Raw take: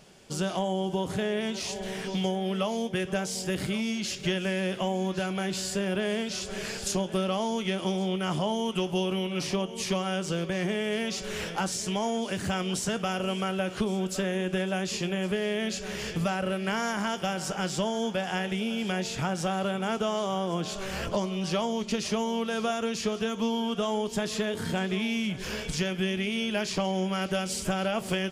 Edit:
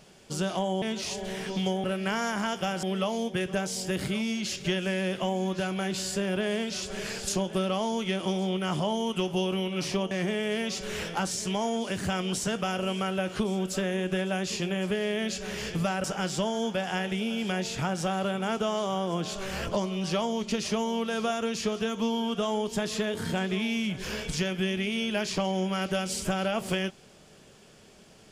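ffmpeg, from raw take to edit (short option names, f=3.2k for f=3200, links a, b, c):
-filter_complex "[0:a]asplit=6[a][b][c][d][e][f];[a]atrim=end=0.822[g];[b]atrim=start=1.398:end=2.422[h];[c]atrim=start=16.448:end=17.442[i];[d]atrim=start=2.418:end=9.702[j];[e]atrim=start=10.518:end=16.452[k];[f]atrim=start=17.438[l];[g][h]acrossfade=d=0.004:c1=hsin:c2=hsin[m];[m][i]acrossfade=d=0.004:c1=hsin:c2=hsin[n];[n][j]acrossfade=d=0.004:c1=hsin:c2=hsin[o];[o][k]acrossfade=d=0.004:c1=hsin:c2=hsin[p];[p][l]acrossfade=d=0.004:c1=hsin:c2=hsin"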